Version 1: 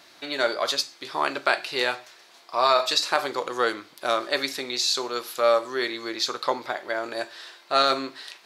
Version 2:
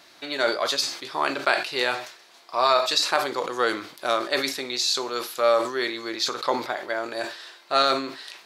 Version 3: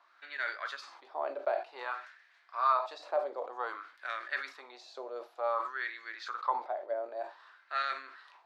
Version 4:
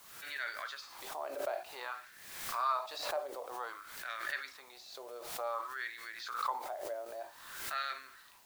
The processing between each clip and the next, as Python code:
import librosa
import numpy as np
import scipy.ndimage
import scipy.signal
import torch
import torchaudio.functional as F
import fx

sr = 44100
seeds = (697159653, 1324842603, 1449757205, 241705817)

y1 = fx.sustainer(x, sr, db_per_s=100.0)
y2 = fx.wah_lfo(y1, sr, hz=0.54, low_hz=580.0, high_hz=1800.0, q=4.1)
y2 = scipy.signal.sosfilt(scipy.signal.bessel(4, 290.0, 'highpass', norm='mag', fs=sr, output='sos'), y2)
y2 = y2 * librosa.db_to_amplitude(-2.0)
y3 = fx.high_shelf(y2, sr, hz=3100.0, db=10.5)
y3 = fx.dmg_noise_colour(y3, sr, seeds[0], colour='white', level_db=-57.0)
y3 = fx.pre_swell(y3, sr, db_per_s=51.0)
y3 = y3 * librosa.db_to_amplitude(-7.0)